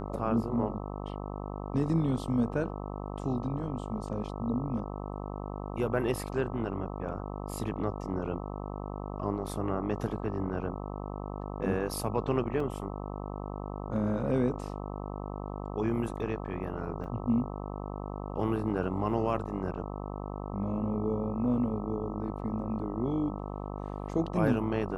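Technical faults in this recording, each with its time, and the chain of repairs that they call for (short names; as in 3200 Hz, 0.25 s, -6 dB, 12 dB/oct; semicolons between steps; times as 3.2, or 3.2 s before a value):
buzz 50 Hz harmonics 26 -38 dBFS
12.6 gap 3.2 ms
17.04 gap 4.9 ms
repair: de-hum 50 Hz, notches 26; interpolate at 12.6, 3.2 ms; interpolate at 17.04, 4.9 ms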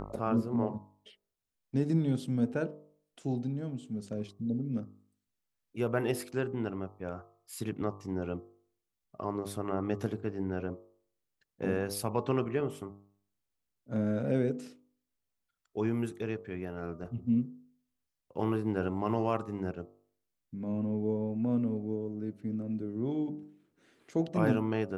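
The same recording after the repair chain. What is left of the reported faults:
none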